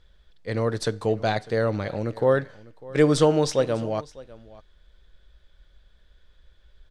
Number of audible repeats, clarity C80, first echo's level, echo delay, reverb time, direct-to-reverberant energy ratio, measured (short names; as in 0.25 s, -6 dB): 1, none, -20.5 dB, 0.6 s, none, none